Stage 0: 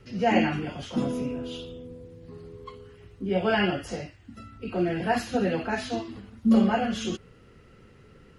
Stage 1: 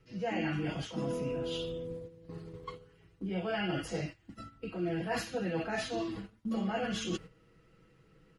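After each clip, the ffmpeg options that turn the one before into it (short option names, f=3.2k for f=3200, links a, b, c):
-af "agate=range=-11dB:threshold=-43dB:ratio=16:detection=peak,aecho=1:1:6.2:0.63,areverse,acompressor=threshold=-32dB:ratio=5,areverse"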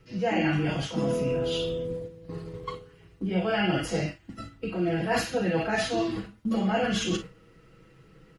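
-af "aecho=1:1:38|53:0.299|0.2,volume=7.5dB"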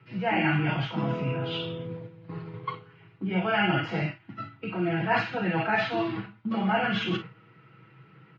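-af "highpass=f=120:w=0.5412,highpass=f=120:w=1.3066,equalizer=f=120:t=q:w=4:g=10,equalizer=f=250:t=q:w=4:g=-5,equalizer=f=500:t=q:w=4:g=-8,equalizer=f=910:t=q:w=4:g=7,equalizer=f=1.4k:t=q:w=4:g=6,equalizer=f=2.3k:t=q:w=4:g=6,lowpass=f=3.6k:w=0.5412,lowpass=f=3.6k:w=1.3066"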